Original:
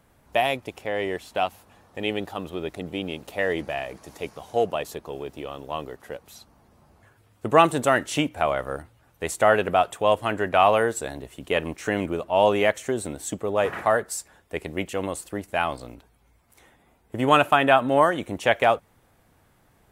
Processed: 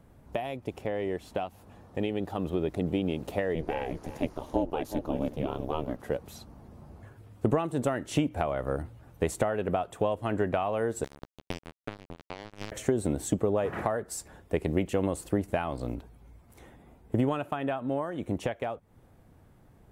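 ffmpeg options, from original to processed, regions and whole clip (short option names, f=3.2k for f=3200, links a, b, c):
-filter_complex "[0:a]asettb=1/sr,asplit=3[a][b][c];[a]atrim=end=3.554[d];[b]atrim=start=3.55:end=5.99,asetpts=PTS-STARTPTS,afade=t=in:d=0.004:c=qsin,afade=t=out:st=2.436:d=0.004:c=qsin,bandreject=f=7.8k:w=8.7,aeval=exprs='val(0)*sin(2*PI*160*n/s)':c=same,aecho=1:1:361:0.126,atrim=end_sample=107604[e];[c]atrim=start=5.986[f];[d][e]acrossfade=d=0.004:c1=hsin:c2=qsin[g];[g][f]acrossfade=d=0.004:c1=qsin:c2=hsin,asettb=1/sr,asplit=3[h][i][j];[h]atrim=end=11.044[k];[i]atrim=start=11.04:end=12.72,asetpts=PTS-STARTPTS,afade=t=in:d=0.004:c=qsin,afade=t=out:st=1.676:d=0.004:c=qsin,acompressor=threshold=-30dB:ratio=10:attack=3.2:release=140:knee=1:detection=peak,acrusher=bits=3:mix=0:aa=0.5[l];[j]atrim=start=12.716[m];[k][l]acrossfade=d=0.004:c1=hsin:c2=qsin[n];[n][m]acrossfade=d=0.004:c1=qsin:c2=hsin,acompressor=threshold=-29dB:ratio=16,tiltshelf=f=690:g=6.5,dynaudnorm=f=280:g=21:m=4dB"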